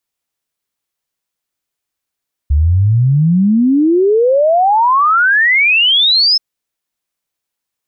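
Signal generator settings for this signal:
exponential sine sweep 69 Hz → 5,300 Hz 3.88 s −7.5 dBFS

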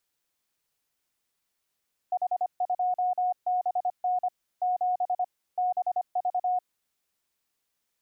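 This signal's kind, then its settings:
Morse code "H2BN 7 BV" 25 words per minute 728 Hz −23 dBFS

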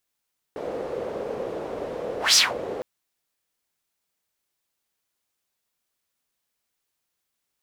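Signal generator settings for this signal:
pass-by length 2.26 s, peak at 0:01.79, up 0.16 s, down 0.21 s, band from 490 Hz, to 5,700 Hz, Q 3.8, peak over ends 16 dB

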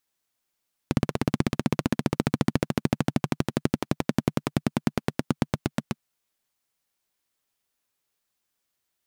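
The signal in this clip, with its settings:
pulse-train model of a single-cylinder engine, changing speed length 5.13 s, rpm 2,000, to 900, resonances 150/220 Hz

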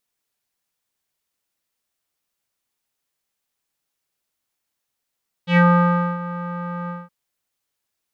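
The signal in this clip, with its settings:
subtractive voice square F3 12 dB per octave, low-pass 1,300 Hz, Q 4, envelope 1.5 octaves, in 0.17 s, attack 99 ms, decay 0.61 s, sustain −16 dB, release 0.20 s, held 1.42 s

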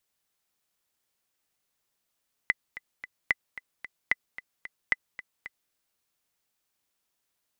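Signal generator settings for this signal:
click track 223 BPM, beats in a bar 3, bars 4, 2,010 Hz, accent 16.5 dB −9 dBFS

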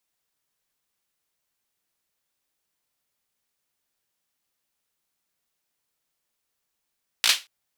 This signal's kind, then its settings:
synth clap length 0.23 s, bursts 4, apart 17 ms, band 3,200 Hz, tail 0.23 s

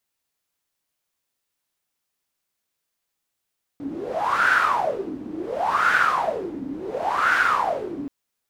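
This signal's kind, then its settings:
wind from filtered noise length 4.28 s, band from 270 Hz, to 1,500 Hz, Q 10, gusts 3, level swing 14 dB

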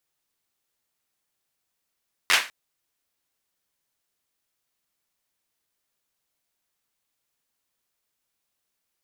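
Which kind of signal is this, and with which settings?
synth clap length 0.20 s, bursts 4, apart 11 ms, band 1,900 Hz, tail 0.30 s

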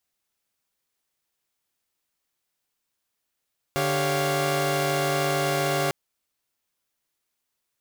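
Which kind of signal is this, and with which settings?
held notes D3/G4/C#5/F5 saw, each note −25.5 dBFS 2.15 s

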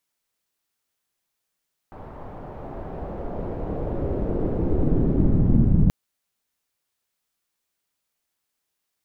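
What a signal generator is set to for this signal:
filter sweep on noise pink, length 3.98 s lowpass, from 880 Hz, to 150 Hz, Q 1.6, linear, gain ramp +27 dB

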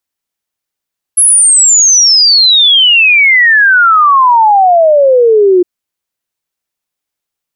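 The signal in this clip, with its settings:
exponential sine sweep 11,000 Hz → 350 Hz 4.46 s −3 dBFS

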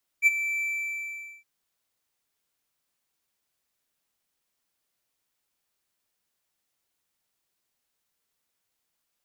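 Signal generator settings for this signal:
note with an ADSR envelope triangle 2,330 Hz, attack 47 ms, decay 27 ms, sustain −12.5 dB, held 0.39 s, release 826 ms −11.5 dBFS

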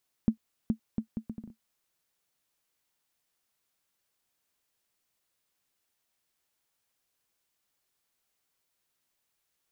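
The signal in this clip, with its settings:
bouncing ball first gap 0.42 s, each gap 0.67, 222 Hz, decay 95 ms −13.5 dBFS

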